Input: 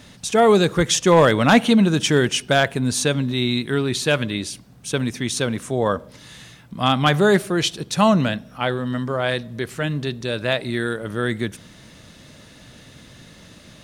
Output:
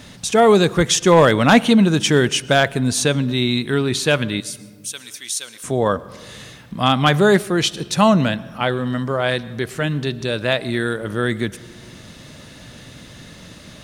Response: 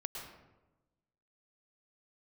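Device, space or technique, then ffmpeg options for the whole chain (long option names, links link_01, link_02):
ducked reverb: -filter_complex "[0:a]asettb=1/sr,asplit=3[link_01][link_02][link_03];[link_01]atrim=end=4.404[link_04];[link_02]atrim=start=4.4:end=5.64,asetpts=PTS-STARTPTS,afade=type=in:duration=0.004:curve=qsin,afade=type=out:start_time=1.236:duration=0.004:curve=qsin,aderivative[link_05];[link_03]atrim=start=5.636[link_06];[link_04][link_05]acrossfade=duration=0.004:curve1=hsin:curve2=qsin[link_07];[link_07][link_06]acrossfade=duration=0.004:curve1=qsin:curve2=hsin,asplit=3[link_08][link_09][link_10];[1:a]atrim=start_sample=2205[link_11];[link_09][link_11]afir=irnorm=-1:irlink=0[link_12];[link_10]apad=whole_len=609912[link_13];[link_12][link_13]sidechaincompress=threshold=-32dB:ratio=5:attack=36:release=539,volume=-4.5dB[link_14];[link_08][link_14]amix=inputs=2:normalize=0,volume=1.5dB"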